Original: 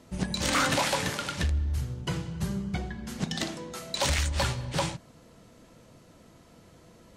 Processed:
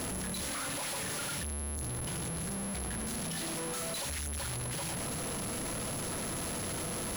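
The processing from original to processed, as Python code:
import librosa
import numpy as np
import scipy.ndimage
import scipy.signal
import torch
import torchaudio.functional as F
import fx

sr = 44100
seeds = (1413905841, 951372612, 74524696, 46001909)

y = np.sign(x) * np.sqrt(np.mean(np.square(x)))
y = y + 10.0 ** (-33.0 / 20.0) * np.sin(2.0 * np.pi * 11000.0 * np.arange(len(y)) / sr)
y = F.gain(torch.from_numpy(y), -6.5).numpy()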